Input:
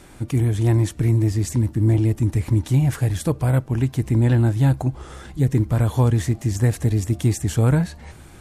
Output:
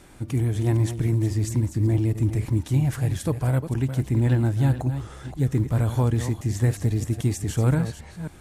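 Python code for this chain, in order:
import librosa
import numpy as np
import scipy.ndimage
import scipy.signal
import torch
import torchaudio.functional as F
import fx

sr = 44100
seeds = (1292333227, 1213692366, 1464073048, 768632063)

y = fx.reverse_delay(x, sr, ms=267, wet_db=-10.0)
y = fx.quant_float(y, sr, bits=6)
y = y * 10.0 ** (-4.0 / 20.0)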